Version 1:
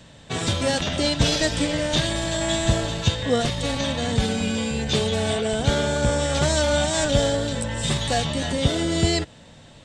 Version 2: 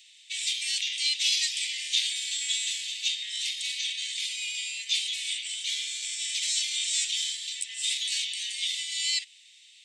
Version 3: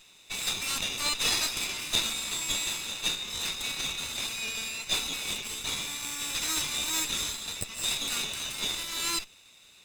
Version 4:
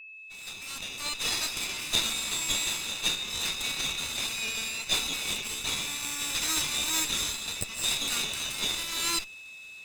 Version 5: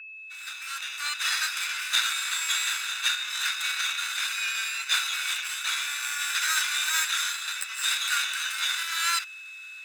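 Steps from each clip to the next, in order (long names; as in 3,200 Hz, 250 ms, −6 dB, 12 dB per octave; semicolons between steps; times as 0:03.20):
Butterworth high-pass 2,100 Hz 72 dB per octave
lower of the sound and its delayed copy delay 0.8 ms; parametric band 1,900 Hz +6.5 dB 0.22 octaves
fade in at the beginning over 2.16 s; steady tone 2,600 Hz −45 dBFS; level +1.5 dB
high-pass with resonance 1,500 Hz, resonance Q 7.5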